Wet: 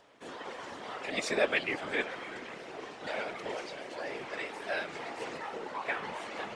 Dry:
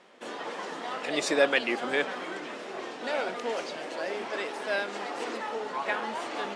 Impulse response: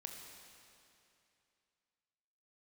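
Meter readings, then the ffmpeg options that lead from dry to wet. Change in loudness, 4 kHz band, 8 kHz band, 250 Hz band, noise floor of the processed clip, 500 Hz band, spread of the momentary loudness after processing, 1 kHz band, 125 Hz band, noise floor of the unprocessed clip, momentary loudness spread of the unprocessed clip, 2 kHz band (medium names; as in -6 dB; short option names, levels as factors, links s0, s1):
-5.0 dB, -5.5 dB, -6.0 dB, -6.5 dB, -46 dBFS, -6.0 dB, 13 LU, -6.0 dB, +0.5 dB, -40 dBFS, 12 LU, -4.0 dB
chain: -af "acompressor=mode=upward:threshold=0.00282:ratio=2.5,afftfilt=real='hypot(re,im)*cos(2*PI*random(0))':imag='hypot(re,im)*sin(2*PI*random(1))':win_size=512:overlap=0.75,adynamicequalizer=threshold=0.00282:dfrequency=2200:dqfactor=3.2:tfrequency=2200:tqfactor=3.2:attack=5:release=100:ratio=0.375:range=3:mode=boostabove:tftype=bell"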